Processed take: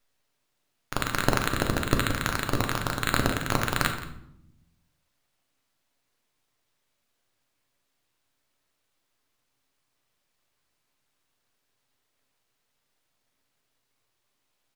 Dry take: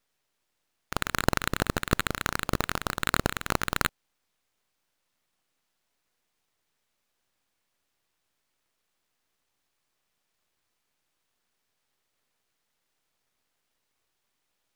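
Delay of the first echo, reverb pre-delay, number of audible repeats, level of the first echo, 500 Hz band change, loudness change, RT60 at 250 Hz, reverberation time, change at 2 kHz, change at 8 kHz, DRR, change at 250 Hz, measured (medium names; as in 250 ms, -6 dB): 172 ms, 3 ms, 1, -15.5 dB, +2.5 dB, +2.0 dB, 1.3 s, 0.75 s, +1.5 dB, +1.0 dB, 3.5 dB, +3.0 dB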